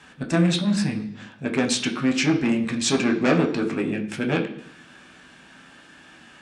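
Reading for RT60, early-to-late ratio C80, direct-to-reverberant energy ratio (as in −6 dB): 0.65 s, 14.0 dB, 2.5 dB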